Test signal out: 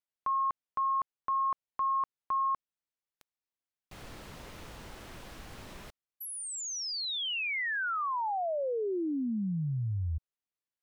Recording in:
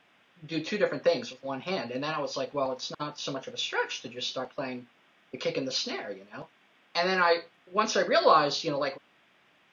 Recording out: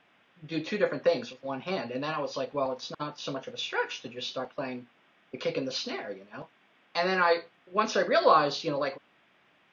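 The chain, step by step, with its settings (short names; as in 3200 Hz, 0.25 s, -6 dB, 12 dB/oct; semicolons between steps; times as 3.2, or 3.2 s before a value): high shelf 6100 Hz -10.5 dB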